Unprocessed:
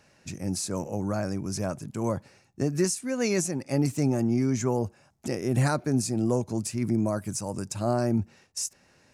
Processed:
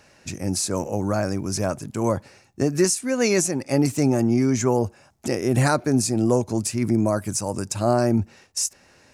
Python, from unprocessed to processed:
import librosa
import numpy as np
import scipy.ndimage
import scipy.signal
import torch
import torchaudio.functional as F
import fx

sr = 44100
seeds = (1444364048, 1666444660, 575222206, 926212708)

y = fx.peak_eq(x, sr, hz=160.0, db=-5.0, octaves=0.98)
y = fx.quant_float(y, sr, bits=6, at=(0.72, 2.01))
y = F.gain(torch.from_numpy(y), 7.0).numpy()